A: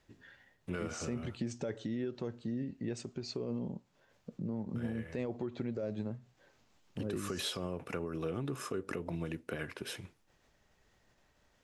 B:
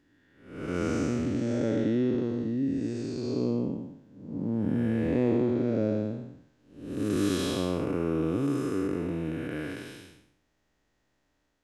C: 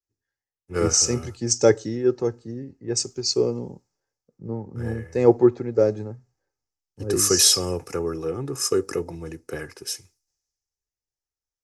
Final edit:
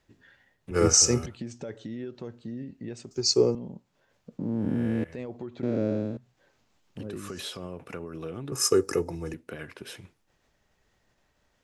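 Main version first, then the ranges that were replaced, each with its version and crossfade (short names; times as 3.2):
A
0.71–1.26 from C
3.11–3.55 from C
4.39–5.04 from B
5.63–6.17 from B
8.52–9.34 from C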